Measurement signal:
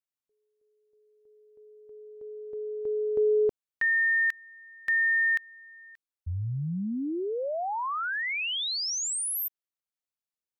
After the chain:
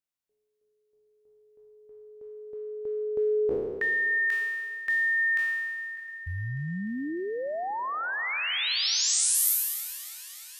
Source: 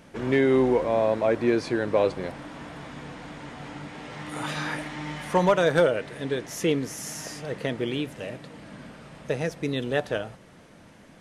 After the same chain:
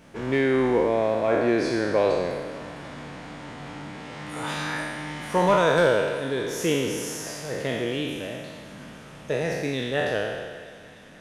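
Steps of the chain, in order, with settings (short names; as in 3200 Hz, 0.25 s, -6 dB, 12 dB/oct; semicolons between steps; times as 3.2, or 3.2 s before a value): spectral trails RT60 1.57 s; thinning echo 0.3 s, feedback 82%, high-pass 490 Hz, level -20 dB; gain -2 dB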